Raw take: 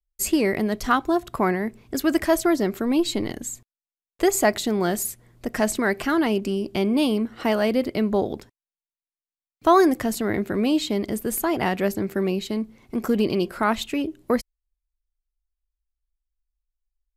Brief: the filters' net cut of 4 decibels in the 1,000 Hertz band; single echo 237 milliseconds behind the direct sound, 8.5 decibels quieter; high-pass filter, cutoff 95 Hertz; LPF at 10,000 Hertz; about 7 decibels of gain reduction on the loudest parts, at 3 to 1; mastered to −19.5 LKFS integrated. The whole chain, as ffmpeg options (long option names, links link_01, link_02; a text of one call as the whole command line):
ffmpeg -i in.wav -af "highpass=95,lowpass=10000,equalizer=frequency=1000:width_type=o:gain=-5.5,acompressor=threshold=-24dB:ratio=3,aecho=1:1:237:0.376,volume=8.5dB" out.wav